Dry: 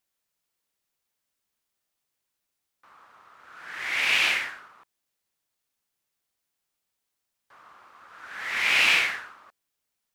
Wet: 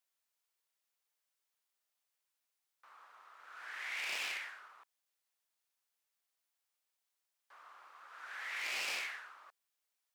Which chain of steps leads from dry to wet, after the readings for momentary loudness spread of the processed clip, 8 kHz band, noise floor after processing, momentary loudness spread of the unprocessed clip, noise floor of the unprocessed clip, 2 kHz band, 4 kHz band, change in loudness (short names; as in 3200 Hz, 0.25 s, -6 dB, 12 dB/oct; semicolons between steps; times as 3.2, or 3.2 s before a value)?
22 LU, -11.0 dB, under -85 dBFS, 18 LU, -82 dBFS, -16.0 dB, -16.0 dB, -17.0 dB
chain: one-sided fold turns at -21 dBFS; HPF 560 Hz 12 dB/oct; compressor 2:1, threshold -40 dBFS, peak gain reduction 11 dB; gain -5 dB